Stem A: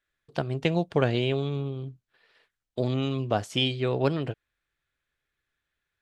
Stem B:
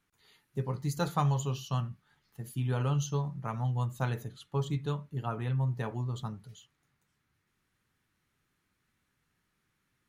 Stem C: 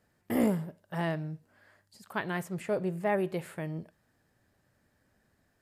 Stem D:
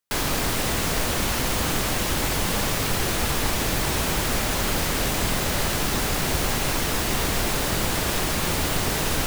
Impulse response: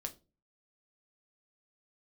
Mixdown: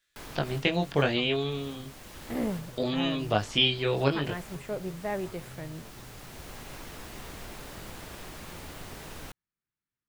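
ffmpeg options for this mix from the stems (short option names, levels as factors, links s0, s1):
-filter_complex "[0:a]equalizer=f=5000:w=0.48:g=12.5,flanger=delay=18.5:depth=3.2:speed=0.63,highshelf=f=7000:g=9.5,volume=1.12[s0];[1:a]volume=0.119,asplit=2[s1][s2];[2:a]adelay=2000,volume=0.631[s3];[3:a]adelay=50,volume=0.126[s4];[s2]apad=whole_len=410933[s5];[s4][s5]sidechaincompress=threshold=0.00251:ratio=8:attack=32:release=1120[s6];[s0][s1][s3][s6]amix=inputs=4:normalize=0,acrossover=split=3200[s7][s8];[s8]acompressor=threshold=0.00501:ratio=4:attack=1:release=60[s9];[s7][s9]amix=inputs=2:normalize=0"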